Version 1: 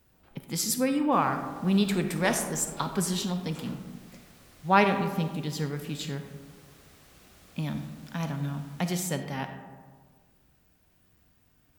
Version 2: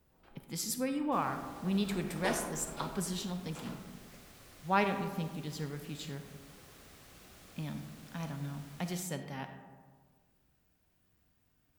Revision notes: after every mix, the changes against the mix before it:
speech -8.0 dB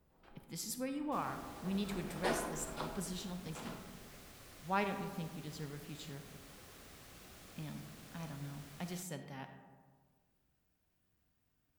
speech -6.0 dB

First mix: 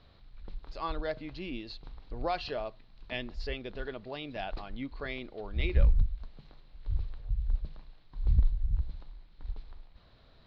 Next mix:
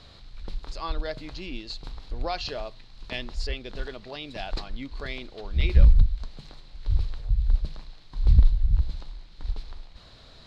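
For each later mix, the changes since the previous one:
background +8.0 dB; master: remove distance through air 240 m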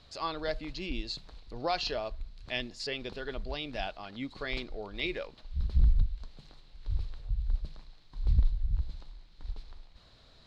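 speech: entry -0.60 s; background -8.5 dB

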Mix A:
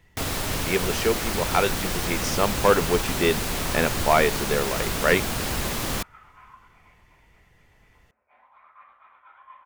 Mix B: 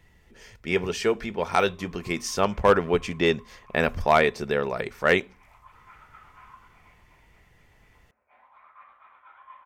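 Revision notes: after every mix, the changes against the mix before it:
first sound: muted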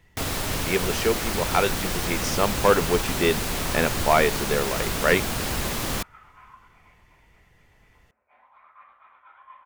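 first sound: unmuted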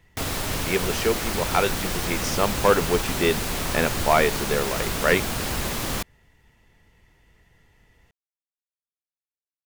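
second sound: muted

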